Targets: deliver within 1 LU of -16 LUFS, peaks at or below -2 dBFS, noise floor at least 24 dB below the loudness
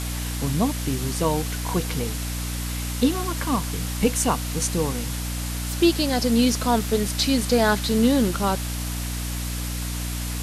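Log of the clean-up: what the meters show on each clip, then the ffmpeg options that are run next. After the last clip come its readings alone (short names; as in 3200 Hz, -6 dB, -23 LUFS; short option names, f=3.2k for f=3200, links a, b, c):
hum 60 Hz; harmonics up to 300 Hz; hum level -27 dBFS; noise floor -29 dBFS; noise floor target -48 dBFS; loudness -23.5 LUFS; peak -6.0 dBFS; loudness target -16.0 LUFS
-> -af "bandreject=f=60:t=h:w=6,bandreject=f=120:t=h:w=6,bandreject=f=180:t=h:w=6,bandreject=f=240:t=h:w=6,bandreject=f=300:t=h:w=6"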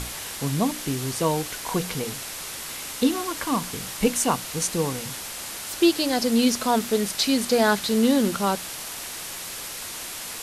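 hum none; noise floor -35 dBFS; noise floor target -49 dBFS
-> -af "afftdn=nr=14:nf=-35"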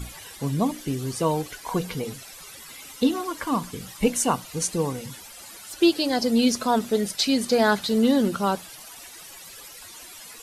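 noise floor -44 dBFS; noise floor target -48 dBFS
-> -af "afftdn=nr=6:nf=-44"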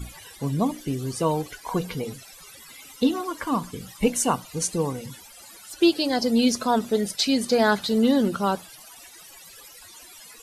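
noise floor -47 dBFS; noise floor target -48 dBFS
-> -af "afftdn=nr=6:nf=-47"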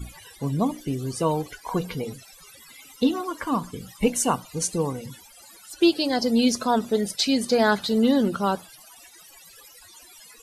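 noise floor -50 dBFS; loudness -24.0 LUFS; peak -7.0 dBFS; loudness target -16.0 LUFS
-> -af "volume=8dB,alimiter=limit=-2dB:level=0:latency=1"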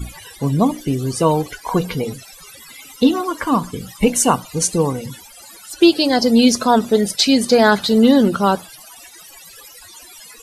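loudness -16.5 LUFS; peak -2.0 dBFS; noise floor -42 dBFS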